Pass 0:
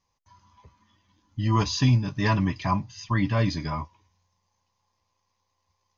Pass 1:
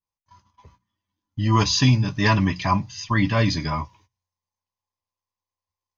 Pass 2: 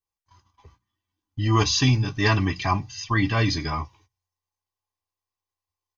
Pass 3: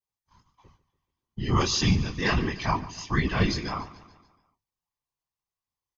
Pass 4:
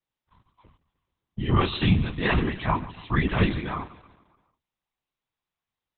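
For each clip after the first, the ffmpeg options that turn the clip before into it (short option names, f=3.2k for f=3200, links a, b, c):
-af "agate=range=-21dB:threshold=-57dB:ratio=16:detection=peak,bandreject=f=60:t=h:w=6,bandreject=f=120:t=h:w=6,bandreject=f=180:t=h:w=6,adynamicequalizer=threshold=0.0141:dfrequency=1500:dqfactor=0.7:tfrequency=1500:tqfactor=0.7:attack=5:release=100:ratio=0.375:range=2:mode=boostabove:tftype=highshelf,volume=4dB"
-af "aecho=1:1:2.6:0.51,volume=-1.5dB"
-af "flanger=delay=17:depth=8:speed=1.6,afftfilt=real='hypot(re,im)*cos(2*PI*random(0))':imag='hypot(re,im)*sin(2*PI*random(1))':win_size=512:overlap=0.75,aecho=1:1:144|288|432|576|720:0.133|0.0707|0.0375|0.0199|0.0105,volume=5.5dB"
-af "volume=2.5dB" -ar 48000 -c:a libopus -b:a 8k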